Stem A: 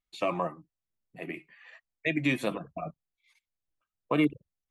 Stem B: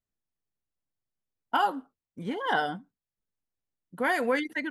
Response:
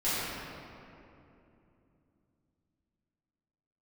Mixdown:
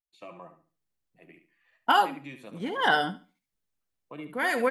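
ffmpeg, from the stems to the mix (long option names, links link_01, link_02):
-filter_complex "[0:a]volume=-16dB,asplit=3[link_01][link_02][link_03];[link_02]volume=-10dB[link_04];[1:a]adynamicequalizer=threshold=0.0112:dfrequency=1500:dqfactor=0.7:tfrequency=1500:tqfactor=0.7:attack=5:release=100:ratio=0.375:range=2.5:mode=boostabove:tftype=highshelf,adelay=350,volume=3dB,asplit=2[link_05][link_06];[link_06]volume=-16.5dB[link_07];[link_03]apad=whole_len=222982[link_08];[link_05][link_08]sidechaincompress=threshold=-45dB:ratio=8:attack=24:release=707[link_09];[link_04][link_07]amix=inputs=2:normalize=0,aecho=0:1:71|142|213|284:1|0.26|0.0676|0.0176[link_10];[link_01][link_09][link_10]amix=inputs=3:normalize=0"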